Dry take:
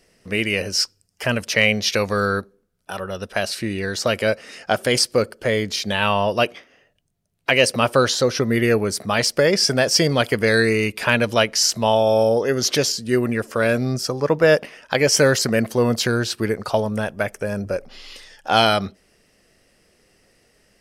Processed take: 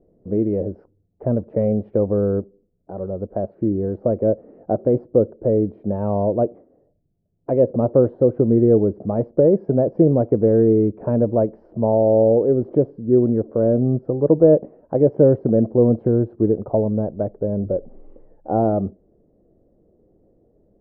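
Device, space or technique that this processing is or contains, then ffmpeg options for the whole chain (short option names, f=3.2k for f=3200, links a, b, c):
under water: -af "lowpass=f=610:w=0.5412,lowpass=f=610:w=1.3066,equalizer=f=320:t=o:w=0.21:g=6,volume=3.5dB"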